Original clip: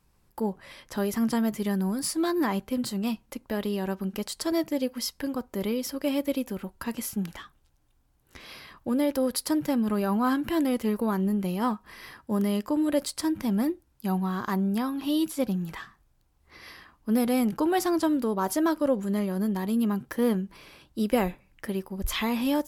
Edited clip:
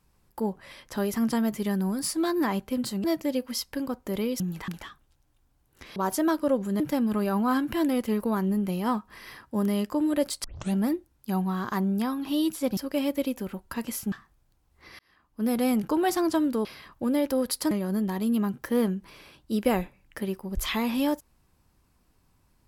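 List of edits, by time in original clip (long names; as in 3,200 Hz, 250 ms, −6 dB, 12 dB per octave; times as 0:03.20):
0:03.04–0:04.51: remove
0:05.87–0:07.22: swap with 0:15.53–0:15.81
0:08.50–0:09.56: swap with 0:18.34–0:19.18
0:13.20: tape start 0.32 s
0:16.68–0:17.32: fade in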